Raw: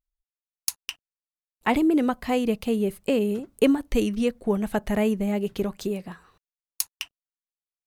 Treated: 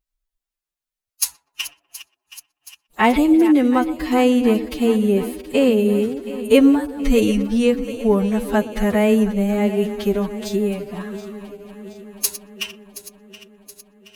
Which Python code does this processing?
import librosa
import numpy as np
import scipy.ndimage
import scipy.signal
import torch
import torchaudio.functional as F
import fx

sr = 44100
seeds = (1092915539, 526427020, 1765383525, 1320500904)

p1 = fx.reverse_delay_fb(x, sr, ms=201, feedback_pct=74, wet_db=-13.5)
p2 = p1 + fx.echo_banded(p1, sr, ms=68, feedback_pct=62, hz=410.0, wet_db=-15.0, dry=0)
p3 = fx.stretch_vocoder(p2, sr, factor=1.8)
p4 = fx.spec_box(p3, sr, start_s=1.58, length_s=0.66, low_hz=320.0, high_hz=710.0, gain_db=7)
y = p4 * librosa.db_to_amplitude(6.5)